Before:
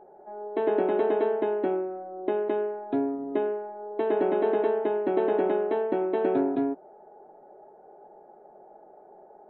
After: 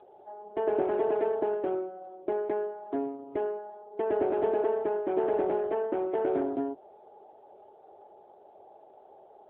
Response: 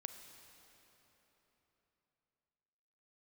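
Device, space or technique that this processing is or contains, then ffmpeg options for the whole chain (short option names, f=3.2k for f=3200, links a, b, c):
telephone: -af "highpass=330,lowpass=3.2k,volume=-1dB" -ar 8000 -c:a libopencore_amrnb -b:a 7950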